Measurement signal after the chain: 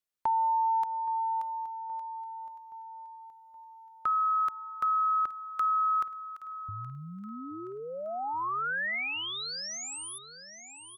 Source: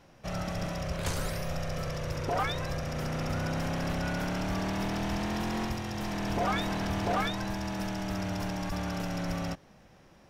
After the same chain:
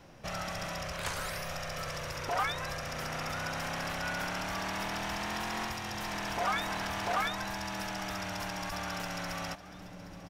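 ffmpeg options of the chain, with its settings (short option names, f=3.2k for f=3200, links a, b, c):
-filter_complex "[0:a]aecho=1:1:822|1644|2466|3288|4110:0.119|0.0642|0.0347|0.0187|0.0101,acrossover=split=750|2700|5500[a][b][c][d];[a]acompressor=threshold=-46dB:ratio=4[e];[b]acompressor=threshold=-30dB:ratio=4[f];[c]acompressor=threshold=-49dB:ratio=4[g];[d]acompressor=threshold=-47dB:ratio=4[h];[e][f][g][h]amix=inputs=4:normalize=0,volume=3dB"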